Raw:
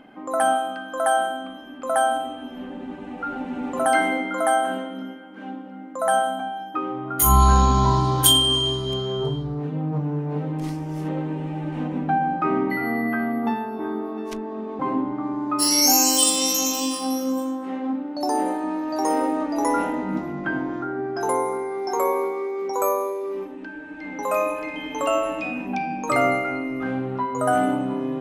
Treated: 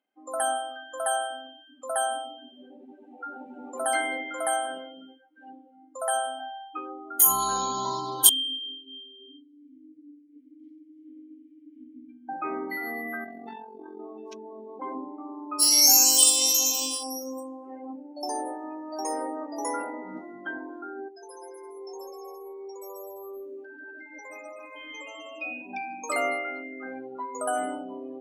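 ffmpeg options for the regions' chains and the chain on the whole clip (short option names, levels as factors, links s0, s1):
-filter_complex "[0:a]asettb=1/sr,asplit=3[s0][s1][s2];[s0]atrim=end=8.294[s3];[s1]atrim=start=8.29:end=12.29,asetpts=PTS-STARTPTS,afade=t=in:d=0.004:c=qsin,afade=t=out:st=3.996:d=0.004:c=qsin,asplit=3[s4][s5][s6];[s4]bandpass=f=270:t=q:w=8,volume=1[s7];[s5]bandpass=f=2290:t=q:w=8,volume=0.501[s8];[s6]bandpass=f=3010:t=q:w=8,volume=0.355[s9];[s7][s8][s9]amix=inputs=3:normalize=0,aeval=exprs='clip(val(0),-1,0.119)':c=same,aecho=1:1:90|180|270|360|450|540:0.299|0.164|0.0903|0.0497|0.0273|0.015,atrim=end_sample=176400[s10];[s2]atrim=start=12.286[s11];[s3][s10]acrossfade=d=0.004:c1=hsin:c2=qsin[s12];[s12][s11]acrossfade=d=0.004:c1=qsin:c2=hsin,asettb=1/sr,asplit=3[s13][s14][s15];[s13]atrim=end=13.244[s16];[s14]atrim=start=13.24:end=14,asetpts=PTS-STARTPTS,afade=t=in:d=0.004:c=qsin,afade=t=out:st=0.756:d=0.004:c=qsin,equalizer=f=4300:w=5.2:g=10,tremolo=f=45:d=0.824,asoftclip=type=hard:threshold=0.075[s17];[s15]atrim=start=13.996[s18];[s16][s17]acrossfade=d=0.004:c1=hsin:c2=qsin[s19];[s19][s18]acrossfade=d=0.004:c1=qsin:c2=hsin,asettb=1/sr,asplit=3[s20][s21][s22];[s20]atrim=end=17.034[s23];[s21]atrim=start=17.03:end=20.07,asetpts=PTS-STARTPTS,afade=t=in:d=0.004:c=qsin,afade=t=out:st=3.036:d=0.004:c=qsin,highshelf=f=5800:g=-2.5,asoftclip=type=hard:threshold=0.188,asuperstop=centerf=3800:order=4:qfactor=1.9[s24];[s22]atrim=start=20.066[s25];[s23][s24]acrossfade=d=0.004:c1=hsin:c2=qsin[s26];[s26][s25]acrossfade=d=0.004:c1=qsin:c2=hsin,asettb=1/sr,asplit=3[s27][s28][s29];[s27]atrim=end=21.084[s30];[s28]atrim=start=21.08:end=25.41,asetpts=PTS-STARTPTS,afade=t=in:d=0.004:c=qsin,afade=t=out:st=4.326:d=0.004:c=qsin,acompressor=threshold=0.0224:ratio=20:attack=3.2:release=140:knee=1:detection=peak,aecho=1:1:140|252|341.6|413.3|470.6|516.5:0.794|0.631|0.501|0.398|0.316|0.251,atrim=end_sample=190953[s31];[s29]atrim=start=25.406[s32];[s30][s31]acrossfade=d=0.004:c1=hsin:c2=qsin[s33];[s33][s32]acrossfade=d=0.004:c1=qsin:c2=hsin,highpass=580,equalizer=f=1100:w=0.57:g=-10.5,afftdn=nr=27:nf=-40,volume=1.26"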